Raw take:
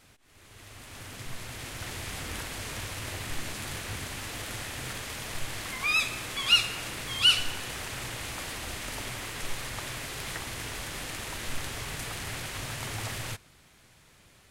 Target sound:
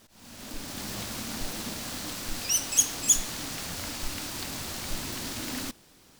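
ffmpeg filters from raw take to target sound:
ffmpeg -i in.wav -af "asetrate=103194,aresample=44100,volume=1.5dB" out.wav

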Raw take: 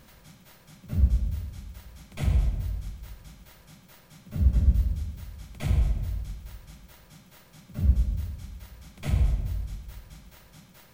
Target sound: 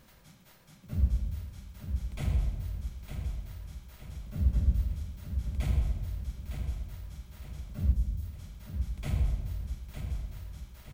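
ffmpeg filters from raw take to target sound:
ffmpeg -i in.wav -filter_complex "[0:a]asettb=1/sr,asplit=3[link_01][link_02][link_03];[link_01]atrim=end=7.924[link_04];[link_02]atrim=start=7.92:end=8.39,asetpts=PTS-STARTPTS,afade=type=in:duration=0.004:curve=qsin,afade=type=out:start_time=0.466:duration=0.004:curve=qsin,equalizer=frequency=1700:width_type=o:width=2.3:gain=-14[link_05];[link_03]atrim=start=8.386[link_06];[link_04][link_05]acrossfade=duration=0.004:curve1=hsin:curve2=qsin[link_07];[link_07][link_06]acrossfade=duration=0.004:curve1=qsin:curve2=hsin,asplit=2[link_08][link_09];[link_09]aecho=0:1:909|1818|2727|3636|4545:0.447|0.197|0.0865|0.0381|0.0167[link_10];[link_08][link_10]amix=inputs=2:normalize=0,volume=-5dB" out.wav

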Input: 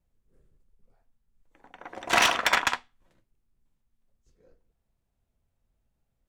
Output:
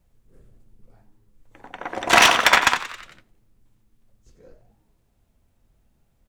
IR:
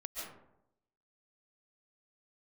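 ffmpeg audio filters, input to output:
-filter_complex "[0:a]asplit=6[link_01][link_02][link_03][link_04][link_05][link_06];[link_02]adelay=90,afreqshift=100,volume=-14dB[link_07];[link_03]adelay=180,afreqshift=200,volume=-20dB[link_08];[link_04]adelay=270,afreqshift=300,volume=-26dB[link_09];[link_05]adelay=360,afreqshift=400,volume=-32.1dB[link_10];[link_06]adelay=450,afreqshift=500,volume=-38.1dB[link_11];[link_01][link_07][link_08][link_09][link_10][link_11]amix=inputs=6:normalize=0,asplit=2[link_12][link_13];[link_13]acompressor=threshold=-34dB:ratio=6,volume=-2.5dB[link_14];[link_12][link_14]amix=inputs=2:normalize=0,volume=6.5dB"

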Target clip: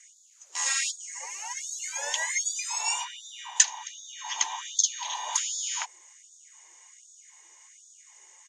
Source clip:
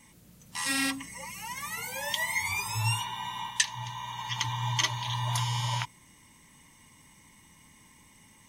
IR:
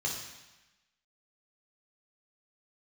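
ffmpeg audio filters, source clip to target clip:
-filter_complex "[0:a]asplit=2[link_01][link_02];[link_02]asetrate=37084,aresample=44100,atempo=1.18921,volume=-9dB[link_03];[link_01][link_03]amix=inputs=2:normalize=0,lowpass=frequency=6800:width_type=q:width=13,highshelf=frequency=3600:gain=-7,afftfilt=real='re*gte(b*sr/1024,310*pow(3400/310,0.5+0.5*sin(2*PI*1.3*pts/sr)))':imag='im*gte(b*sr/1024,310*pow(3400/310,0.5+0.5*sin(2*PI*1.3*pts/sr)))':win_size=1024:overlap=0.75"

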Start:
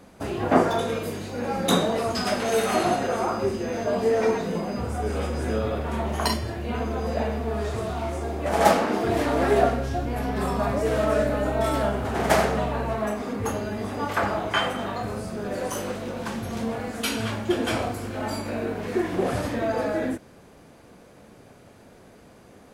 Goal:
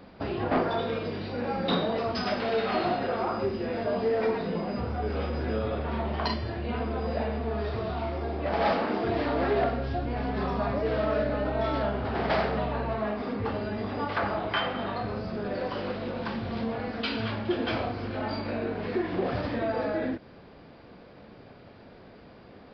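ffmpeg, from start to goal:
ffmpeg -i in.wav -filter_complex "[0:a]asplit=2[link_01][link_02];[link_02]acompressor=threshold=-31dB:ratio=6,volume=2.5dB[link_03];[link_01][link_03]amix=inputs=2:normalize=0,asoftclip=type=hard:threshold=-12.5dB,aresample=11025,aresample=44100,volume=-7dB" out.wav

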